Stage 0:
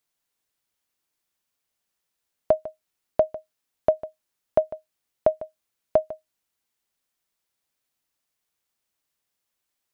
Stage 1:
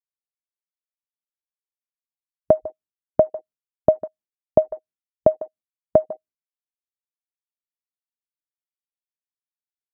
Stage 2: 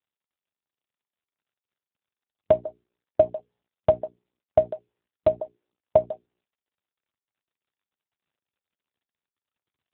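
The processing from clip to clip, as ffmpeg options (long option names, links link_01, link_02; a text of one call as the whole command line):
ffmpeg -i in.wav -af "afwtdn=0.01,agate=range=-33dB:threshold=-53dB:ratio=3:detection=peak,equalizer=frequency=170:width=0.3:gain=13,volume=-2dB" out.wav
ffmpeg -i in.wav -af "asubboost=boost=8:cutoff=120,bandreject=frequency=60:width_type=h:width=6,bandreject=frequency=120:width_type=h:width=6,bandreject=frequency=180:width_type=h:width=6,bandreject=frequency=240:width_type=h:width=6,bandreject=frequency=300:width_type=h:width=6,bandreject=frequency=360:width_type=h:width=6,bandreject=frequency=420:width_type=h:width=6" -ar 8000 -c:a libopencore_amrnb -b:a 7950 out.amr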